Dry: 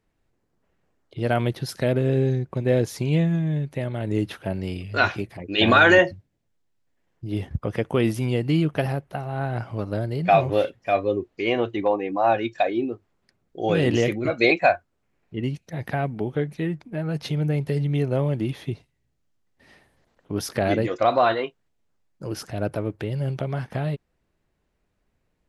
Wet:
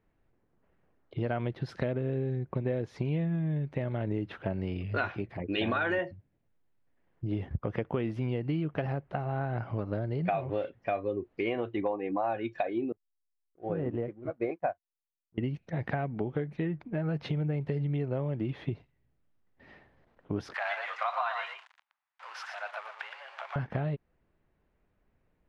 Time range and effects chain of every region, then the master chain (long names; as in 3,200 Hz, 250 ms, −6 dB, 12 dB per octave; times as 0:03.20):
0:12.92–0:15.38: low-pass filter 1,200 Hz + slack as between gear wheels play −42.5 dBFS + expander for the loud parts 2.5 to 1, over −32 dBFS
0:20.54–0:23.56: converter with a step at zero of −35 dBFS + Butterworth high-pass 830 Hz + single-tap delay 117 ms −7.5 dB
whole clip: low-pass filter 2,400 Hz 12 dB per octave; downward compressor 6 to 1, threshold −28 dBFS